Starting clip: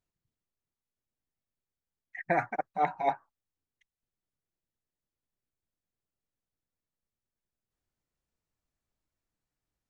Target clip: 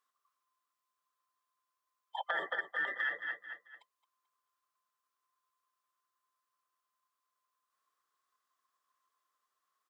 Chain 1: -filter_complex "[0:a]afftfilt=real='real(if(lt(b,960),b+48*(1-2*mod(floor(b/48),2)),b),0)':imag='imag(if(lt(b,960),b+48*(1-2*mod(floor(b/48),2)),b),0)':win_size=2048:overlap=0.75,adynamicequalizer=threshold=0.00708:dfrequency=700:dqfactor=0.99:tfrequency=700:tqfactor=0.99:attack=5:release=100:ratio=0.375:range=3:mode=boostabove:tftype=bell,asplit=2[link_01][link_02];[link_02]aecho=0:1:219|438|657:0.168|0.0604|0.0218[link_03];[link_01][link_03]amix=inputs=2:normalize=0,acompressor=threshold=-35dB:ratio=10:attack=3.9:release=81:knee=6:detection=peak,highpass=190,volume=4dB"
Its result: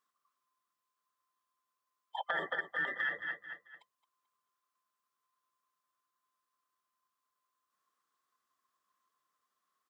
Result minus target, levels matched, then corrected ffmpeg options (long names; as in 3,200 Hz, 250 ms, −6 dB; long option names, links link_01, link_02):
250 Hz band +5.0 dB
-filter_complex "[0:a]afftfilt=real='real(if(lt(b,960),b+48*(1-2*mod(floor(b/48),2)),b),0)':imag='imag(if(lt(b,960),b+48*(1-2*mod(floor(b/48),2)),b),0)':win_size=2048:overlap=0.75,adynamicequalizer=threshold=0.00708:dfrequency=700:dqfactor=0.99:tfrequency=700:tqfactor=0.99:attack=5:release=100:ratio=0.375:range=3:mode=boostabove:tftype=bell,asplit=2[link_01][link_02];[link_02]aecho=0:1:219|438|657:0.168|0.0604|0.0218[link_03];[link_01][link_03]amix=inputs=2:normalize=0,acompressor=threshold=-35dB:ratio=10:attack=3.9:release=81:knee=6:detection=peak,highpass=390,volume=4dB"